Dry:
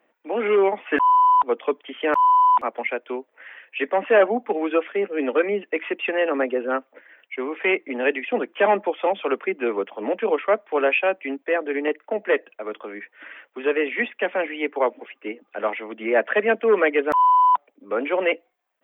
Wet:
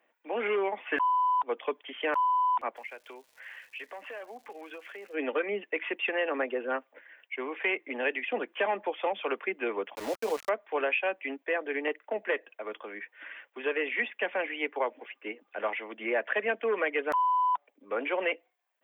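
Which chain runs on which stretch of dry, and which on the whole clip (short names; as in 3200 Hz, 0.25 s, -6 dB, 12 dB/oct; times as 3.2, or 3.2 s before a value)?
2.75–5.13 bell 140 Hz -8.5 dB 2.4 oct + compressor 4:1, threshold -36 dBFS + crackle 430/s -48 dBFS
9.95–10.49 high shelf 2100 Hz -9.5 dB + sample gate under -31 dBFS
whole clip: low shelf 480 Hz -10 dB; notch 1300 Hz, Q 13; compressor, threshold -22 dBFS; gain -2.5 dB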